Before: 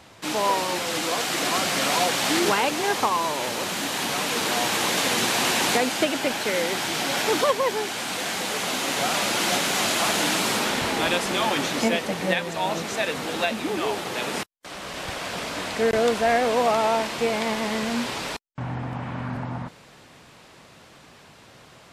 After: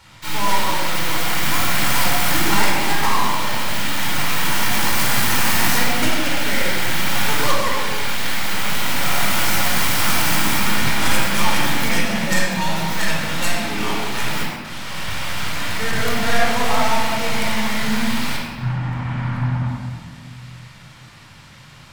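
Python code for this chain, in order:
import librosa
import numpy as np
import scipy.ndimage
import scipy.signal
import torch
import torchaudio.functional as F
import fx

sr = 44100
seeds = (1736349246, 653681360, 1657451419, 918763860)

y = fx.tracing_dist(x, sr, depth_ms=0.33)
y = fx.peak_eq(y, sr, hz=440.0, db=-15.0, octaves=1.2)
y = fx.room_shoebox(y, sr, seeds[0], volume_m3=2200.0, walls='mixed', distance_m=4.5)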